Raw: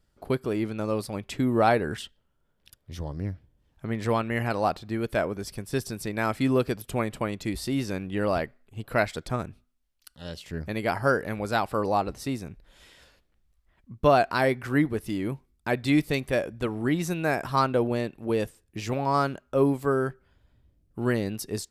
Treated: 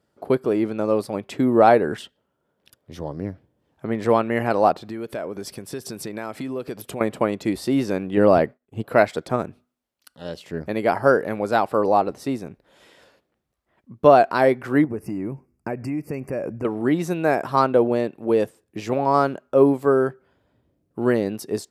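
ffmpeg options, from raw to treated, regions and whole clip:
-filter_complex "[0:a]asettb=1/sr,asplit=3[a][b][c];[a]atrim=end=4.734[d];[b]atrim=start=4.73:end=7.01,asetpts=PTS-STARTPTS,afade=t=in:d=0.004:c=qsin,afade=t=out:st=2.276:d=0.004:c=qsin,acompressor=threshold=-33dB:ratio=8:attack=3.2:release=140:knee=1:detection=peak,adynamicequalizer=threshold=0.00158:dfrequency=1900:dqfactor=0.7:tfrequency=1900:tqfactor=0.7:attack=5:release=100:ratio=0.375:range=2:mode=boostabove:tftype=highshelf[e];[c]atrim=start=7.006[f];[d][e]acrossfade=d=0.004:c1=hsin:c2=qsin[g];[g][f]acrossfade=d=0.004:c1=qsin:c2=hsin,asettb=1/sr,asplit=3[h][i][j];[h]atrim=end=8.174[k];[i]atrim=start=8.17:end=8.82,asetpts=PTS-STARTPTS,afade=t=in:d=0.004:c=qsin,afade=t=out:st=0.646:d=0.004:c=qsin,agate=range=-33dB:threshold=-50dB:ratio=3:release=100:detection=peak,lowshelf=f=330:g=6.5[l];[j]atrim=start=8.816[m];[k][l]acrossfade=d=0.004:c1=hsin:c2=qsin[n];[n][m]acrossfade=d=0.004:c1=qsin:c2=hsin,asettb=1/sr,asplit=3[o][p][q];[o]atrim=end=14.844[r];[p]atrim=start=14.84:end=16.65,asetpts=PTS-STARTPTS,afade=t=in:d=0.004:c=qsin,afade=t=out:st=1.806:d=0.004:c=qsin,equalizer=f=81:w=0.34:g=10,acompressor=threshold=-27dB:ratio=10:attack=3.2:release=140:knee=1:detection=peak,asuperstop=centerf=3600:order=20:qfactor=2.1[s];[q]atrim=start=16.646[t];[r][s]acrossfade=d=0.004:c1=hsin:c2=qsin[u];[u][t]acrossfade=d=0.004:c1=qsin:c2=hsin,equalizer=f=510:t=o:w=3:g=10,dynaudnorm=f=580:g=17:m=11.5dB,highpass=110,volume=-1.5dB"

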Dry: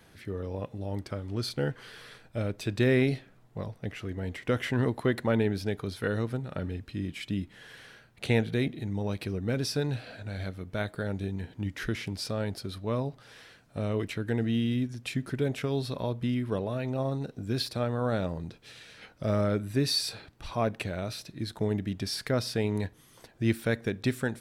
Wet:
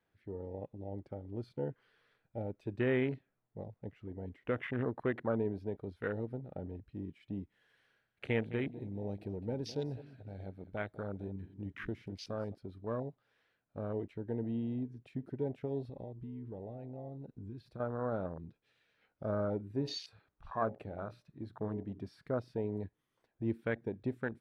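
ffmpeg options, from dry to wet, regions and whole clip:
-filter_complex "[0:a]asettb=1/sr,asplit=3[a][b][c];[a]atrim=end=7.524[d];[b]atrim=start=7.52:end=12.55,asetpts=PTS-STARTPTS,afade=t=in:d=0.004:c=qsin,afade=t=out:st=5.026:d=0.004:c=qsin,highshelf=f=4.6k:g=7.5,aecho=1:1:207|414|621:0.178|0.0587|0.0194,atrim=end_sample=221823[e];[c]atrim=start=12.546[f];[d][e]acrossfade=d=0.004:c1=hsin:c2=qsin[g];[g][f]acrossfade=d=0.004:c1=qsin:c2=hsin,asettb=1/sr,asplit=3[h][i][j];[h]atrim=end=15.894[k];[i]atrim=start=15.89:end=17.8,asetpts=PTS-STARTPTS,afade=t=in:d=0.004:c=qsin,afade=t=out:st=1.906:d=0.004:c=qsin,lowshelf=f=78:g=11,acompressor=threshold=-32dB:ratio=6:attack=3.2:release=140:knee=1:detection=peak[l];[j]atrim=start=17.796[m];[k][l]acrossfade=d=0.004:c1=hsin:c2=qsin[n];[n][m]acrossfade=d=0.004:c1=qsin:c2=hsin,asettb=1/sr,asplit=3[o][p][q];[o]atrim=end=19.764[r];[p]atrim=start=19.76:end=22.24,asetpts=PTS-STARTPTS,afade=t=in:d=0.004:c=qsin,afade=t=out:st=2.476:d=0.004:c=qsin,equalizer=f=1.2k:w=2.3:g=6.5,bandreject=f=60:t=h:w=6,bandreject=f=120:t=h:w=6,bandreject=f=180:t=h:w=6,bandreject=f=240:t=h:w=6,bandreject=f=300:t=h:w=6,bandreject=f=360:t=h:w=6,bandreject=f=420:t=h:w=6,bandreject=f=480:t=h:w=6,bandreject=f=540:t=h:w=6,bandreject=f=600:t=h:w=6[s];[q]atrim=start=22.236[t];[r][s]acrossfade=d=0.004:c1=hsin:c2=qsin[u];[u][t]acrossfade=d=0.004:c1=qsin:c2=hsin,afwtdn=0.02,bass=f=250:g=-5,treble=f=4k:g=-13,volume=-5.5dB"

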